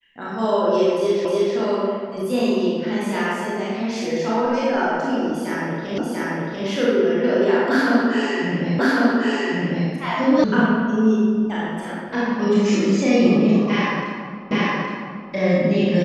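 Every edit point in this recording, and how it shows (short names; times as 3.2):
1.25 repeat of the last 0.31 s
5.98 repeat of the last 0.69 s
8.79 repeat of the last 1.1 s
10.44 sound cut off
14.51 repeat of the last 0.82 s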